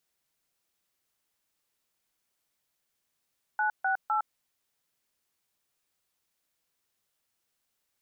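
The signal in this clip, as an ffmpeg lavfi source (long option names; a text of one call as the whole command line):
ffmpeg -f lavfi -i "aevalsrc='0.0447*clip(min(mod(t,0.254),0.11-mod(t,0.254))/0.002,0,1)*(eq(floor(t/0.254),0)*(sin(2*PI*852*mod(t,0.254))+sin(2*PI*1477*mod(t,0.254)))+eq(floor(t/0.254),1)*(sin(2*PI*770*mod(t,0.254))+sin(2*PI*1477*mod(t,0.254)))+eq(floor(t/0.254),2)*(sin(2*PI*852*mod(t,0.254))+sin(2*PI*1336*mod(t,0.254))))':duration=0.762:sample_rate=44100" out.wav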